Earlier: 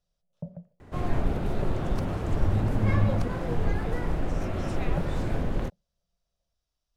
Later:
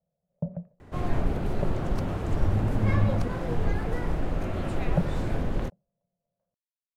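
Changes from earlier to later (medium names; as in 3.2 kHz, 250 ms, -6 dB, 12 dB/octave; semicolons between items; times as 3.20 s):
speech: muted; first sound +6.5 dB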